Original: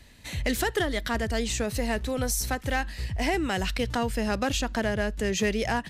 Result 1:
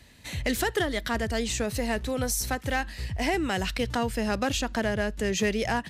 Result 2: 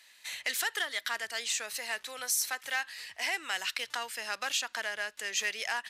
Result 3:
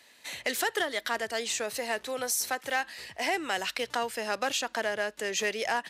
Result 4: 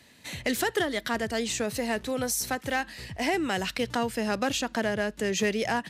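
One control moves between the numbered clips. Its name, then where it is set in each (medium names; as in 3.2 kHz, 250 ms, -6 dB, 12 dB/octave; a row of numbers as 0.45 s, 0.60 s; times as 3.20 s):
high-pass, cutoff frequency: 52 Hz, 1.3 kHz, 510 Hz, 160 Hz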